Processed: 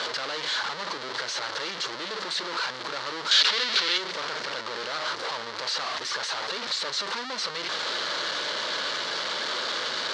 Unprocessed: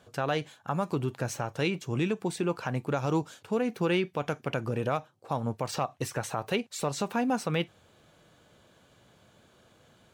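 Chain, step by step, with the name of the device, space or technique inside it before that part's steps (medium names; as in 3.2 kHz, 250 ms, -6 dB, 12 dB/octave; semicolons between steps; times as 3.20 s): home computer beeper (one-bit comparator; cabinet simulation 670–5100 Hz, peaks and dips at 740 Hz -10 dB, 2.5 kHz -7 dB, 4.3 kHz +6 dB); 3.31–3.98 s: frequency weighting D; trim +6.5 dB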